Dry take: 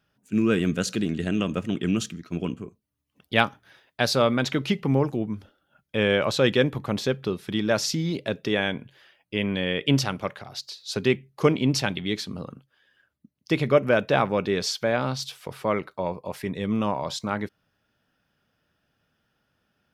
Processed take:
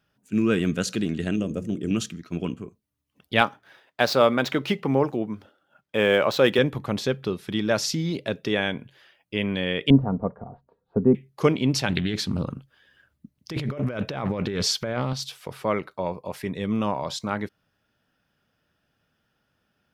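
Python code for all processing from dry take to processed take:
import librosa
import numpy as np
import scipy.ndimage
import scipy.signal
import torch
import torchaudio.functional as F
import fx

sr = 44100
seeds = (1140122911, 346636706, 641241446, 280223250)

y = fx.chain(x, sr, fx.band_shelf(hz=1800.0, db=-12.0, octaves=2.7),
    fx.hum_notches(base_hz=60, count=8), at=(1.36, 1.91))
y = fx.chain(y, sr, fx.median_filter(points=5),
    fx.highpass(hz=190.0, slope=6),
    fx.peak_eq(hz=750.0, db=4.0, octaves=2.6), at=(3.41, 6.59))
y = fx.chain(y, sr, fx.lowpass(hz=1000.0, slope=24),
    fx.tilt_eq(slope=-2.5),
    fx.comb(ms=4.3, depth=0.47), at=(9.9, 11.15))
y = fx.chain(y, sr, fx.low_shelf(hz=130.0, db=11.0),
    fx.over_compress(threshold_db=-27.0, ratio=-1.0),
    fx.doppler_dist(depth_ms=0.22), at=(11.89, 15.13))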